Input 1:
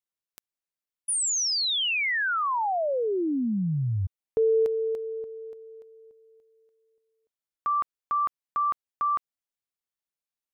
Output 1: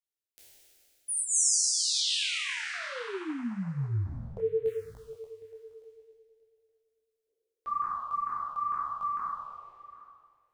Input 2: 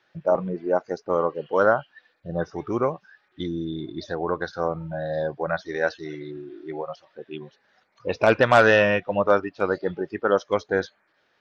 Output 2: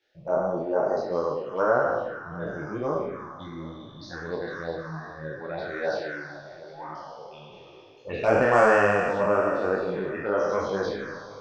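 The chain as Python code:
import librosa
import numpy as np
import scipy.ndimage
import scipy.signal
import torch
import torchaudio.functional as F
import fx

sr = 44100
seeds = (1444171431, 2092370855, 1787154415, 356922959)

y = fx.spec_trails(x, sr, decay_s=2.29)
y = fx.env_phaser(y, sr, low_hz=180.0, high_hz=3700.0, full_db=-14.0)
y = y + 10.0 ** (-19.0 / 20.0) * np.pad(y, (int(761 * sr / 1000.0), 0))[:len(y)]
y = fx.detune_double(y, sr, cents=35)
y = y * 10.0 ** (-2.0 / 20.0)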